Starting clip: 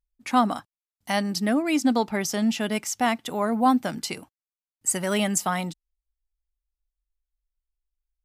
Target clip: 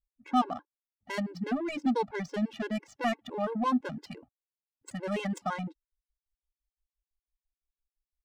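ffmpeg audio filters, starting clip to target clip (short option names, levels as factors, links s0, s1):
-filter_complex "[0:a]asettb=1/sr,asplit=3[s0][s1][s2];[s0]atrim=end=1.494[s3];[s1]atrim=start=1.49:end=4.06,asetpts=PTS-STARTPTS,afade=t=in:d=0.004:c=qsin,afade=t=out:st=2.566:d=0.004:c=qsin,equalizer=f=6900:w=0.41:g=2.5[s4];[s2]atrim=start=4.056[s5];[s3][s4]acrossfade=d=0.004:c1=hsin:c2=qsin[s6];[s6][s5]acrossfade=d=0.004:c1=qsin:c2=hsin,adynamicsmooth=sensitivity=1.5:basefreq=1100,afftfilt=real='re*gt(sin(2*PI*5.9*pts/sr)*(1-2*mod(floor(b*sr/1024/280),2)),0)':imag='im*gt(sin(2*PI*5.9*pts/sr)*(1-2*mod(floor(b*sr/1024/280),2)),0)':win_size=1024:overlap=0.75,volume=0.668"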